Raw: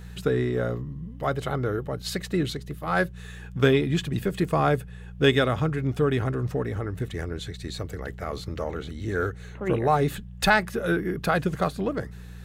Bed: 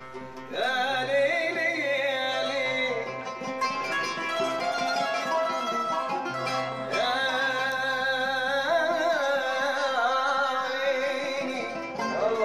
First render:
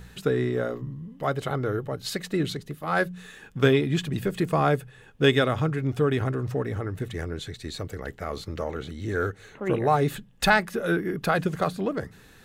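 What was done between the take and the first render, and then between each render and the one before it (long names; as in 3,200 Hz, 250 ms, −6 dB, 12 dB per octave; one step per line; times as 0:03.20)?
hum removal 60 Hz, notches 3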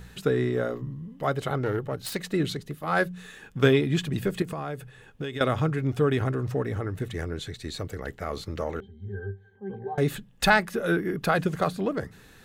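0:01.56–0:02.21: phase distortion by the signal itself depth 0.12 ms
0:04.42–0:05.41: downward compressor 8 to 1, threshold −29 dBFS
0:08.80–0:09.98: resonances in every octave G, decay 0.17 s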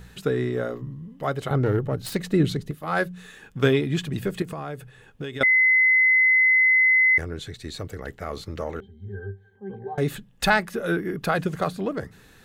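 0:01.50–0:02.71: low-shelf EQ 410 Hz +8.5 dB
0:05.43–0:07.18: beep over 2,040 Hz −14.5 dBFS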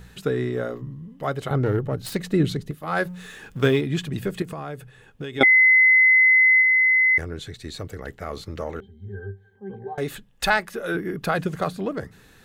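0:03.05–0:03.81: mu-law and A-law mismatch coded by mu
0:05.37–0:06.61: hollow resonant body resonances 330/780/2,200/3,300 Hz, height 16 dB → 13 dB, ringing for 30 ms
0:09.93–0:10.95: parametric band 160 Hz −7.5 dB 1.8 octaves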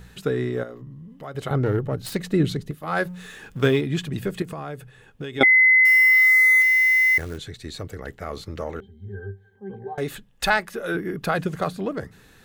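0:00.63–0:01.35: downward compressor 2 to 1, threshold −40 dBFS
0:05.85–0:07.38: floating-point word with a short mantissa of 2 bits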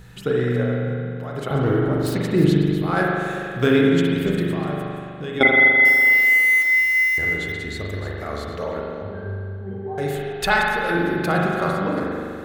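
delay that plays each chunk backwards 188 ms, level −11 dB
spring reverb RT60 2.3 s, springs 41 ms, chirp 75 ms, DRR −2.5 dB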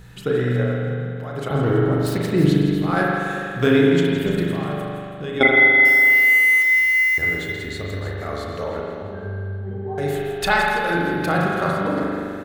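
double-tracking delay 34 ms −12.5 dB
echo with a time of its own for lows and highs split 2,000 Hz, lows 113 ms, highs 164 ms, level −11 dB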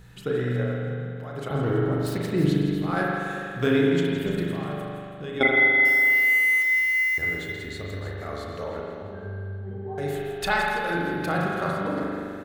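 level −5.5 dB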